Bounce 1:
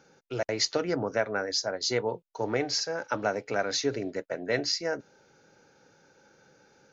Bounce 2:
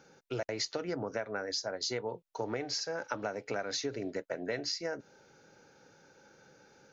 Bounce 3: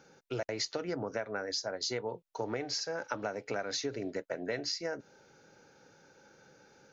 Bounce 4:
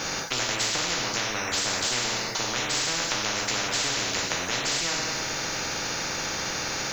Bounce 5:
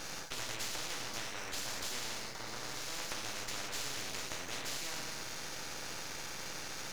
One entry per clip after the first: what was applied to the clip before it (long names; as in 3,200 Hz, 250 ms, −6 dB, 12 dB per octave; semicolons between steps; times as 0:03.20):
downward compressor, threshold −32 dBFS, peak gain reduction 11 dB
no processing that can be heard
dense smooth reverb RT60 0.7 s, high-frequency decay 0.9×, DRR −2.5 dB; every bin compressed towards the loudest bin 10 to 1; level +5.5 dB
healed spectral selection 0:02.37–0:02.90, 1,800–10,000 Hz both; half-wave rectification; level −9 dB